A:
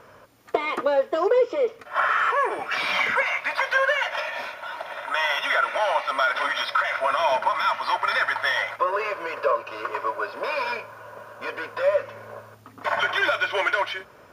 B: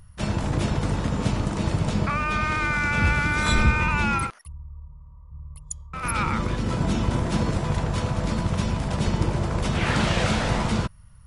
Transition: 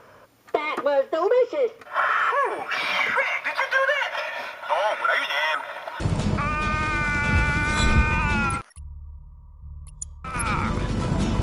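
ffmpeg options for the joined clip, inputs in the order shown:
-filter_complex "[0:a]apad=whole_dur=11.42,atrim=end=11.42,asplit=2[s0][s1];[s0]atrim=end=4.692[s2];[s1]atrim=start=4.688:end=6.002,asetpts=PTS-STARTPTS,areverse[s3];[1:a]atrim=start=1.688:end=7.11[s4];[s2][s3]acrossfade=d=0.004:c1=hsin:c2=hsin[s5];[s5][s4]acrossfade=d=0.004:c1=hsin:c2=hsin"

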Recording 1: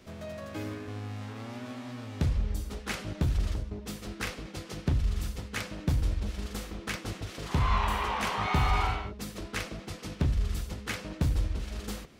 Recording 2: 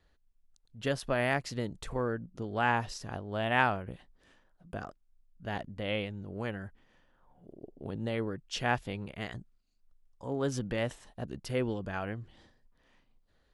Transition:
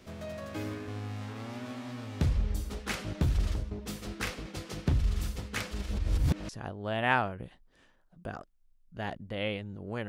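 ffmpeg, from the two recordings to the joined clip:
-filter_complex "[0:a]apad=whole_dur=10.08,atrim=end=10.08,asplit=2[s0][s1];[s0]atrim=end=5.712[s2];[s1]atrim=start=5.708:end=6.492,asetpts=PTS-STARTPTS,areverse[s3];[1:a]atrim=start=2.968:end=6.56[s4];[s2][s3]acrossfade=d=0.004:c1=hsin:c2=hsin[s5];[s5][s4]acrossfade=d=0.004:c1=hsin:c2=hsin"

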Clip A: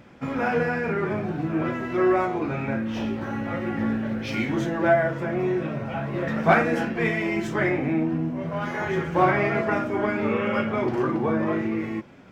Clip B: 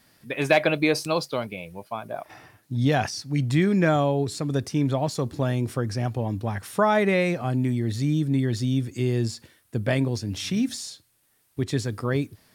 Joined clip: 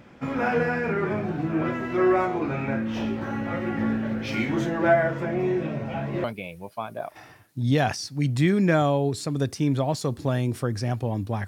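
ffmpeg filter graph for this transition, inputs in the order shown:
-filter_complex "[0:a]asettb=1/sr,asplit=3[s0][s1][s2];[s0]atrim=end=5.254[s3];[s1]atrim=start=5.25:end=6.24,asetpts=PTS-STARTPTS,afade=t=in:d=0.004:c=qsin,afade=t=out:st=0.986:d=0.004:c=qsin,equalizer=f=1300:w=2.2:g=-6[s4];[s2]atrim=start=6.236[s5];[s3][s4]acrossfade=d=0.004:c1=hsin:c2=qsin[s6];[s6][s5]acrossfade=d=0.004:c1=qsin:c2=hsin,apad=whole_dur=11.47,atrim=end=11.47,atrim=end=6.242[s7];[1:a]atrim=start=1.378:end=6.61[s8];[s7][s8]acrossfade=d=0.004:c1=hsin:c2=hsin"

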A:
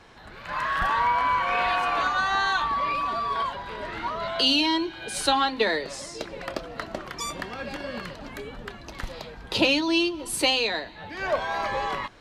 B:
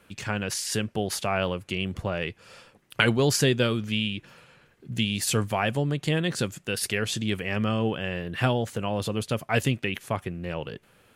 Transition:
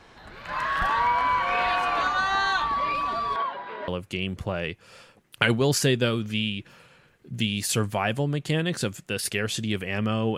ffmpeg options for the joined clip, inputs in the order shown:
-filter_complex "[0:a]asettb=1/sr,asplit=3[s0][s1][s2];[s0]atrim=end=3.364[s3];[s1]atrim=start=3.36:end=3.88,asetpts=PTS-STARTPTS,afade=t=in:d=0.004:c=qsin,afade=t=out:st=0.516:d=0.004:c=qsin,highpass=270,lowpass=2600[s4];[s2]atrim=start=3.876[s5];[s3][s4]acrossfade=d=0.004:c1=hsin:c2=qsin[s6];[s6][s5]acrossfade=d=0.004:c1=qsin:c2=hsin,apad=whole_dur=10.37,atrim=end=10.37,atrim=end=3.882[s7];[1:a]atrim=start=1.458:end=7.95[s8];[s7][s8]acrossfade=d=0.004:c1=hsin:c2=hsin"

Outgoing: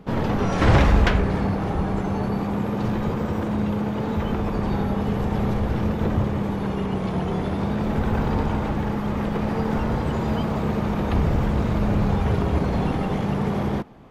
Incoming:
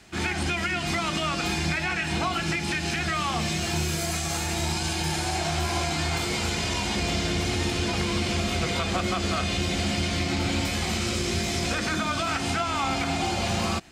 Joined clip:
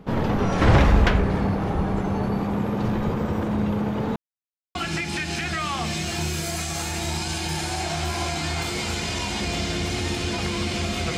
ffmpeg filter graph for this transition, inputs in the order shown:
-filter_complex "[0:a]apad=whole_dur=11.17,atrim=end=11.17,asplit=2[s0][s1];[s0]atrim=end=4.16,asetpts=PTS-STARTPTS,afade=t=out:st=4.156:d=0.004:c=hsin[s2];[s1]atrim=start=4.16:end=4.75,asetpts=PTS-STARTPTS,volume=0[s3];[1:a]atrim=start=2.3:end=8.72,asetpts=PTS-STARTPTS,afade=t=in:d=0.004:c=hsin[s4];[s2][s3][s4]concat=n=3:v=0:a=1"

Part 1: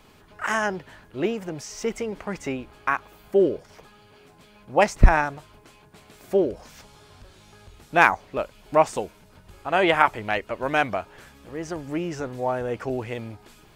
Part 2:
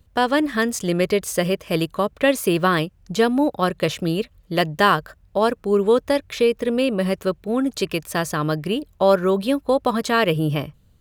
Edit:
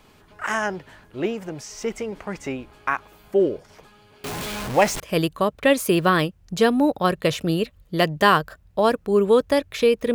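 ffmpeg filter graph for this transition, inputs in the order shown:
-filter_complex "[0:a]asettb=1/sr,asplit=3[s0][s1][s2];[s0]atrim=end=4.244[s3];[s1]atrim=start=4.24:end=5,asetpts=PTS-STARTPTS,afade=t=in:d=0.004:c=qsin,afade=t=out:st=0.756:d=0.004:c=qsin,aeval=exprs='val(0)+0.5*0.0596*sgn(val(0))':c=same[s4];[s2]atrim=start=4.996[s5];[s3][s4]acrossfade=d=0.004:c1=hsin:c2=qsin[s6];[s6][s5]acrossfade=d=0.004:c1=qsin:c2=hsin,apad=whole_dur=10.14,atrim=end=10.14,atrim=end=5.002[s7];[1:a]atrim=start=1.578:end=6.72[s8];[s7][s8]acrossfade=d=0.004:c1=hsin:c2=hsin"

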